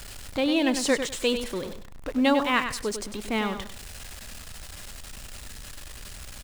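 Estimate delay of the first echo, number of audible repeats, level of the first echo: 99 ms, 3, -8.5 dB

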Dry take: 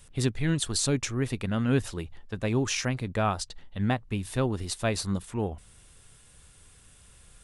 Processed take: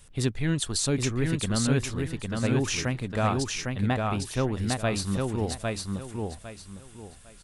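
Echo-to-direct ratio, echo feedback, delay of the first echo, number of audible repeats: -2.5 dB, 26%, 805 ms, 3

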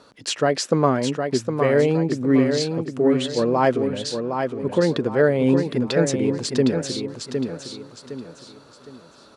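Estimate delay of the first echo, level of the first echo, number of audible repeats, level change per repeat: 761 ms, -6.0 dB, 4, -9.0 dB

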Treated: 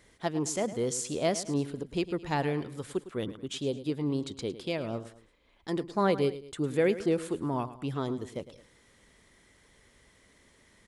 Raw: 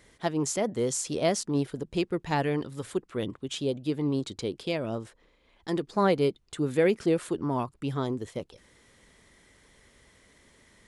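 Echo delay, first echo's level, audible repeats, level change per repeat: 107 ms, -14.5 dB, 2, -7.5 dB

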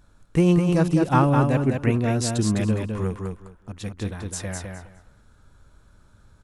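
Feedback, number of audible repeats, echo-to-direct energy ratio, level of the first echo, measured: 19%, 3, -4.5 dB, -4.5 dB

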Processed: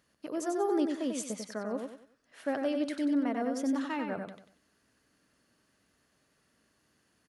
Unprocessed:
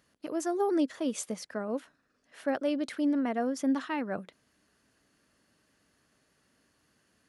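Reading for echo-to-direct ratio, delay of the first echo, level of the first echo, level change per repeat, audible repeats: -4.5 dB, 94 ms, -5.0 dB, -9.5 dB, 4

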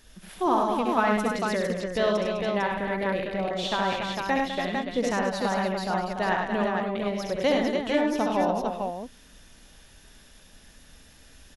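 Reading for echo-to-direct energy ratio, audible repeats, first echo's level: 1.5 dB, 5, -4.5 dB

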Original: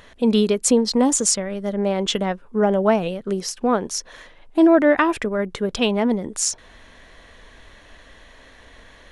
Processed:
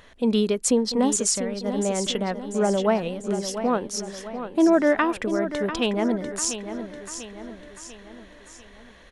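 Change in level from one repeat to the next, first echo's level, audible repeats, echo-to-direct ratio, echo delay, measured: -6.0 dB, -10.0 dB, 5, -9.0 dB, 694 ms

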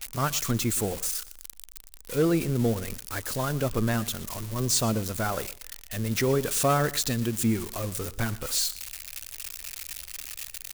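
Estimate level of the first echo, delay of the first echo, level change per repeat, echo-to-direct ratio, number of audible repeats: -19.0 dB, 119 ms, -13.5 dB, -19.0 dB, 2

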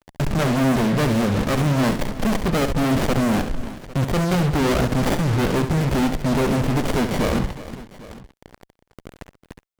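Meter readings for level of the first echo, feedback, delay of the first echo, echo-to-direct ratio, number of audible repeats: -9.0 dB, no regular repeats, 68 ms, -8.0 dB, 3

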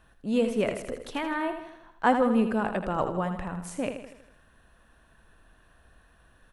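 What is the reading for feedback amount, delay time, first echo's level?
52%, 80 ms, -8.5 dB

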